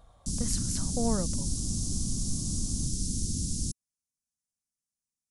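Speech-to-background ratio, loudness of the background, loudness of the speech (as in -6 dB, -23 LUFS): -2.5 dB, -32.0 LUFS, -34.5 LUFS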